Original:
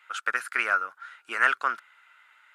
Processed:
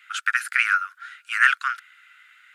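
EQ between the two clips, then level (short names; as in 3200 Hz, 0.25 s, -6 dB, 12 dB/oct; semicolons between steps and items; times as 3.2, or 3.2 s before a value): inverse Chebyshev high-pass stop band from 730 Hz, stop band 40 dB; +7.0 dB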